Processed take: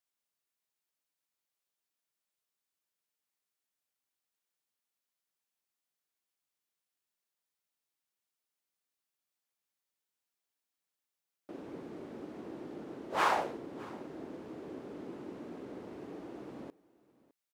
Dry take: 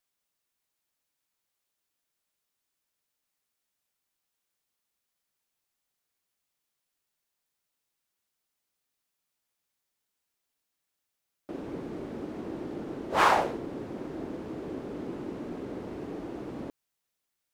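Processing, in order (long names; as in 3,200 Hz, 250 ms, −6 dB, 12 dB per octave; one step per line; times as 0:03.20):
high-pass filter 160 Hz 6 dB per octave
single-tap delay 609 ms −22 dB
level −6.5 dB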